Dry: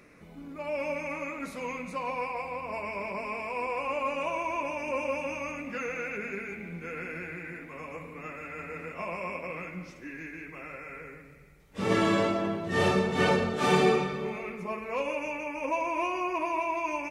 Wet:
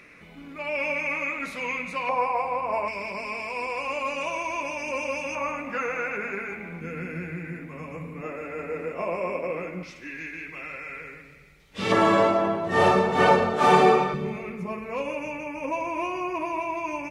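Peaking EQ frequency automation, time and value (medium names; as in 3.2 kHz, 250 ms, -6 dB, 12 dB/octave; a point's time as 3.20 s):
peaking EQ +11 dB 1.8 oct
2.5 kHz
from 2.09 s 810 Hz
from 2.88 s 5 kHz
from 5.35 s 1 kHz
from 6.81 s 160 Hz
from 8.21 s 450 Hz
from 9.83 s 3.5 kHz
from 11.92 s 860 Hz
from 14.14 s 120 Hz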